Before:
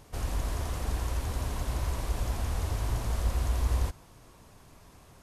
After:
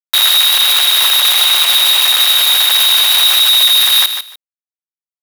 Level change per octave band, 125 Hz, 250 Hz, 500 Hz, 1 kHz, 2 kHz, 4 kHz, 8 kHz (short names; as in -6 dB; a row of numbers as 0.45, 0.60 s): under -40 dB, under -10 dB, +8.0 dB, +17.0 dB, +27.5 dB, +41.5 dB, +29.5 dB